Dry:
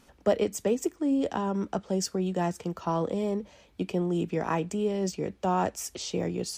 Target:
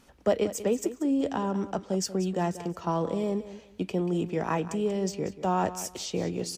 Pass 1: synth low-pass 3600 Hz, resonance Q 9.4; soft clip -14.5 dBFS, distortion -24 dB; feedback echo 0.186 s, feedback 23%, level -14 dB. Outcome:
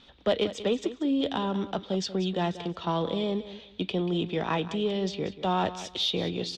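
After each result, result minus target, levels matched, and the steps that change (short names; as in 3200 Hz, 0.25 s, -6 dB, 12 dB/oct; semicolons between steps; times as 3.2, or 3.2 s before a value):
soft clip: distortion +15 dB; 4000 Hz band +9.0 dB
change: soft clip -6.5 dBFS, distortion -38 dB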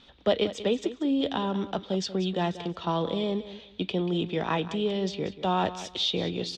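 4000 Hz band +9.0 dB
remove: synth low-pass 3600 Hz, resonance Q 9.4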